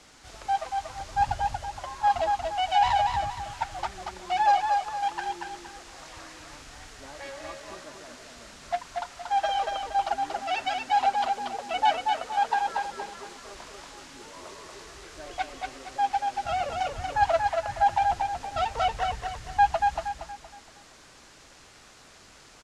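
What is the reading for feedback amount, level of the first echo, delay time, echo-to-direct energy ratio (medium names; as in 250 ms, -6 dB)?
37%, -4.0 dB, 234 ms, -3.5 dB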